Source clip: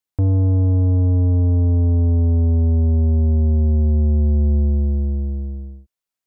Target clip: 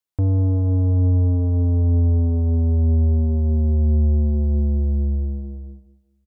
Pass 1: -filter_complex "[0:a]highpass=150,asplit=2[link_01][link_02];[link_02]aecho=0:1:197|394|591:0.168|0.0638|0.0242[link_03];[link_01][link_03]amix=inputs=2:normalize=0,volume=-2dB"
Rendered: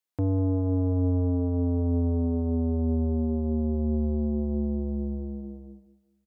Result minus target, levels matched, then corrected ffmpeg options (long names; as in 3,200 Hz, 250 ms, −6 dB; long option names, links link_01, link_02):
125 Hz band −2.5 dB
-filter_complex "[0:a]asplit=2[link_01][link_02];[link_02]aecho=0:1:197|394|591:0.168|0.0638|0.0242[link_03];[link_01][link_03]amix=inputs=2:normalize=0,volume=-2dB"